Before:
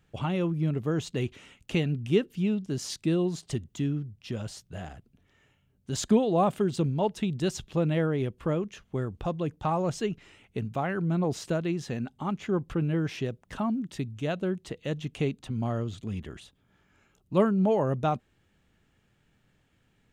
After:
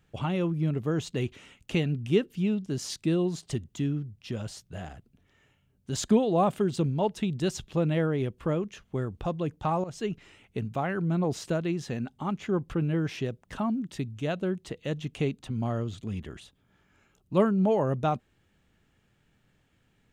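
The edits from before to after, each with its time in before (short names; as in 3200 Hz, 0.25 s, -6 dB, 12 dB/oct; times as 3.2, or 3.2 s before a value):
9.84–10.11 fade in, from -15 dB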